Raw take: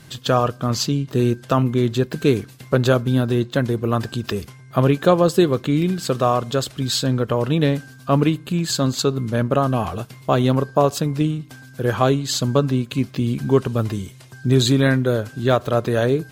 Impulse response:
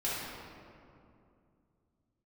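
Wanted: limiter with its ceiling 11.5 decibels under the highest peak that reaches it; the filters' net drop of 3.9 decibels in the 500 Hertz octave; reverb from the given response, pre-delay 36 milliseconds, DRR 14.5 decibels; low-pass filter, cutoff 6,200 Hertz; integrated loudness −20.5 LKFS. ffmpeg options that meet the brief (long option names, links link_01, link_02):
-filter_complex "[0:a]lowpass=6200,equalizer=frequency=500:width_type=o:gain=-5,alimiter=limit=-16dB:level=0:latency=1,asplit=2[link_01][link_02];[1:a]atrim=start_sample=2205,adelay=36[link_03];[link_02][link_03]afir=irnorm=-1:irlink=0,volume=-21.5dB[link_04];[link_01][link_04]amix=inputs=2:normalize=0,volume=5.5dB"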